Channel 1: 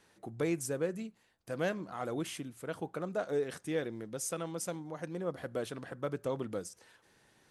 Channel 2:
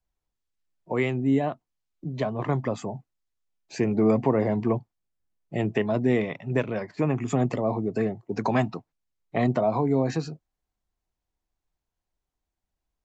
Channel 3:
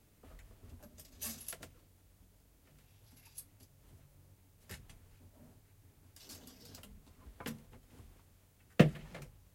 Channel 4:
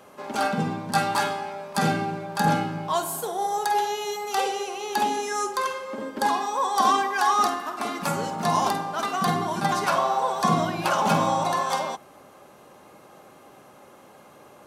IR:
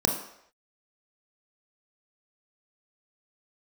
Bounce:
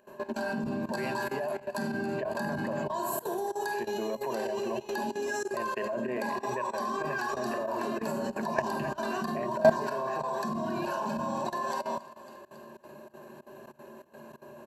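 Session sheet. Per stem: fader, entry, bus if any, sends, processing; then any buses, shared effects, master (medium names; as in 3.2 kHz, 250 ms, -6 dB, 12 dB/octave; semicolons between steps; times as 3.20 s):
-15.5 dB, 0.00 s, bus A, no send, no echo send, none
-13.5 dB, 0.00 s, no bus, send -22.5 dB, echo send -11.5 dB, high-pass 120 Hz; high-order bell 1.1 kHz +14 dB 2.9 oct
-6.5 dB, 0.00 s, no bus, no send, no echo send, none
-5.5 dB, 0.00 s, bus A, send -11 dB, echo send -16 dB, none
bus A: 0.0 dB, peaking EQ 6.8 kHz -14 dB 0.6 oct; compression 3:1, threshold -35 dBFS, peak gain reduction 10.5 dB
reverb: on, pre-delay 25 ms
echo: feedback delay 275 ms, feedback 55%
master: volume shaper 94 bpm, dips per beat 2, -16 dB, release 122 ms; rippled EQ curve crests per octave 1.4, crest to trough 13 dB; level held to a coarse grid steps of 16 dB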